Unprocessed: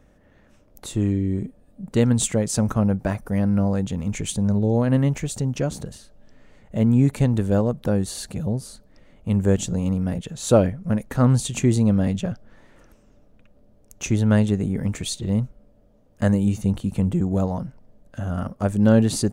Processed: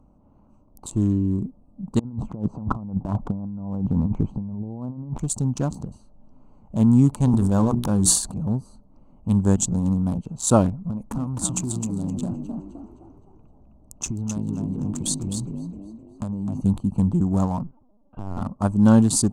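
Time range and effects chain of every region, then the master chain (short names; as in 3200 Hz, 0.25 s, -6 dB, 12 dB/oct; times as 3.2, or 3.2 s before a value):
1.99–5.19 LPF 1100 Hz + negative-ratio compressor -26 dBFS, ratio -0.5
7.1–8.51 notches 60/120/180/240/300/360/420 Hz + transient shaper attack -2 dB, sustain +10 dB
10.85–16.61 compressor 16:1, threshold -24 dBFS + frequency-shifting echo 0.259 s, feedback 42%, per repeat +51 Hz, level -4 dB
17.63–18.41 treble ducked by the level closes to 1900 Hz, closed at -25.5 dBFS + low shelf 95 Hz -11 dB + LPC vocoder at 8 kHz pitch kept
whole clip: Wiener smoothing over 25 samples; graphic EQ 250/500/1000/2000/8000 Hz +4/-9/+12/-11/+11 dB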